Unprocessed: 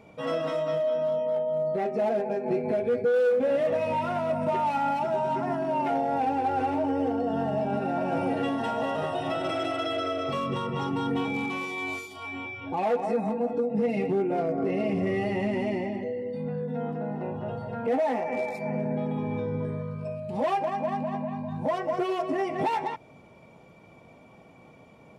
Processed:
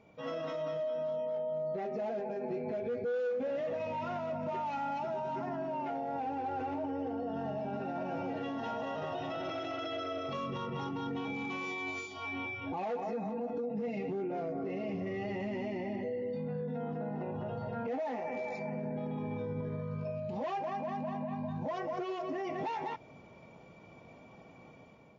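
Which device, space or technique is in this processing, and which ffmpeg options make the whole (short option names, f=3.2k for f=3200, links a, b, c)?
low-bitrate web radio: -filter_complex "[0:a]asettb=1/sr,asplit=3[a][b][c];[a]atrim=end=5.494[d];[b]atrim=start=5.49:end=7.34,asetpts=PTS-STARTPTS,afade=t=in:d=0.004:c=qsin,afade=t=out:st=1.846:d=0.004:c=qsin,highshelf=f=4.7k:g=-6[e];[c]atrim=start=7.336[f];[d][e]acrossfade=d=0.004:c1=hsin:c2=qsin[g];[g][f]acrossfade=d=0.004:c1=qsin:c2=hsin,dynaudnorm=f=220:g=5:m=7dB,alimiter=limit=-21dB:level=0:latency=1:release=58,volume=-8.5dB" -ar 16000 -c:a libmp3lame -b:a 40k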